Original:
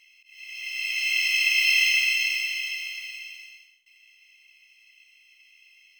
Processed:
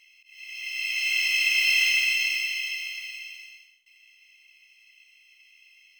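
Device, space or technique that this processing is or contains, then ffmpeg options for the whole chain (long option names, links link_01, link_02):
parallel distortion: -filter_complex "[0:a]asplit=2[link_01][link_02];[link_02]asoftclip=type=hard:threshold=-22.5dB,volume=-10dB[link_03];[link_01][link_03]amix=inputs=2:normalize=0,volume=-2.5dB"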